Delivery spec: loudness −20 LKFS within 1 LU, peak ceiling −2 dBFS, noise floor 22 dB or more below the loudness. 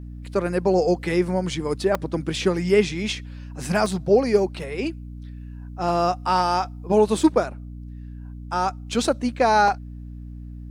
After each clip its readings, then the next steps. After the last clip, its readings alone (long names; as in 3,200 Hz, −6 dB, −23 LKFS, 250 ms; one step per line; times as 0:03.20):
number of dropouts 4; longest dropout 1.8 ms; mains hum 60 Hz; hum harmonics up to 300 Hz; level of the hum −33 dBFS; integrated loudness −22.5 LKFS; sample peak −6.0 dBFS; target loudness −20.0 LKFS
→ repair the gap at 0:01.95/0:03.86/0:04.63/0:09.68, 1.8 ms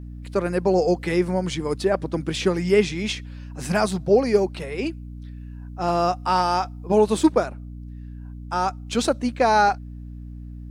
number of dropouts 0; mains hum 60 Hz; hum harmonics up to 300 Hz; level of the hum −33 dBFS
→ mains-hum notches 60/120/180/240/300 Hz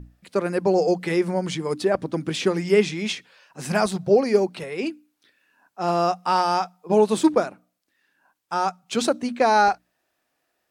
mains hum none found; integrated loudness −22.5 LKFS; sample peak −6.0 dBFS; target loudness −20.0 LKFS
→ level +2.5 dB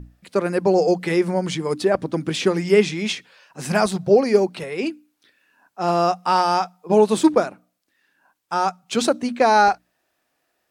integrated loudness −20.0 LKFS; sample peak −3.5 dBFS; background noise floor −72 dBFS